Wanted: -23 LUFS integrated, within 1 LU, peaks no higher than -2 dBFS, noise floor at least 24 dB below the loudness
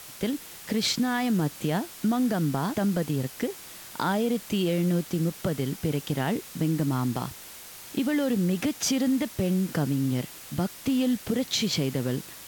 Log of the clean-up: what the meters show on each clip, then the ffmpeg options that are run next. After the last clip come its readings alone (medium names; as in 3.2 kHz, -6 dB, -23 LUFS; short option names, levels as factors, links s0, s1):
noise floor -44 dBFS; noise floor target -52 dBFS; loudness -27.5 LUFS; peak level -13.5 dBFS; loudness target -23.0 LUFS
-> -af "afftdn=nr=8:nf=-44"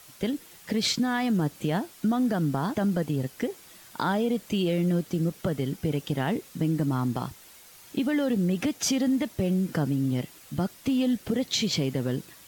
noise floor -51 dBFS; noise floor target -52 dBFS
-> -af "afftdn=nr=6:nf=-51"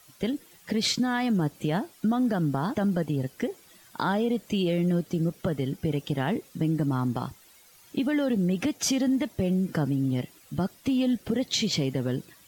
noise floor -56 dBFS; loudness -27.5 LUFS; peak level -14.0 dBFS; loudness target -23.0 LUFS
-> -af "volume=1.68"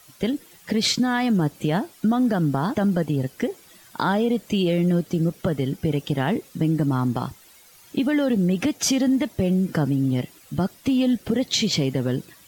loudness -23.0 LUFS; peak level -9.5 dBFS; noise floor -51 dBFS